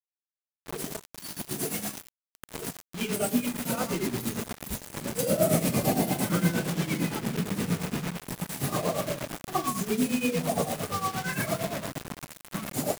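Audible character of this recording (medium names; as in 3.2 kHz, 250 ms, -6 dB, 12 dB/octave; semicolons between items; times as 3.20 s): a quantiser's noise floor 6-bit, dither none; tremolo triangle 8.7 Hz, depth 80%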